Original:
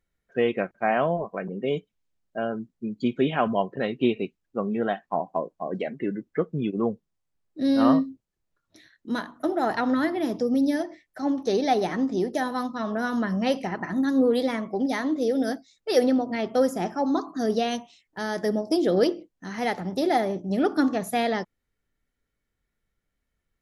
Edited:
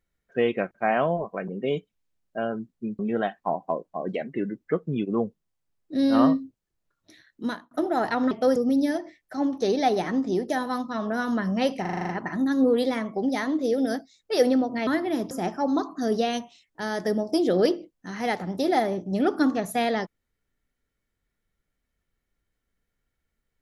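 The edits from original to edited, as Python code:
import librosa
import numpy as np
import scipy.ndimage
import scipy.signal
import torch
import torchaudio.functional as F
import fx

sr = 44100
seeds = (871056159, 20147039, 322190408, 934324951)

y = fx.edit(x, sr, fx.cut(start_s=2.99, length_s=1.66),
    fx.fade_out_span(start_s=9.12, length_s=0.25),
    fx.swap(start_s=9.97, length_s=0.44, other_s=16.44, other_length_s=0.25),
    fx.stutter(start_s=13.66, slice_s=0.04, count=8), tone=tone)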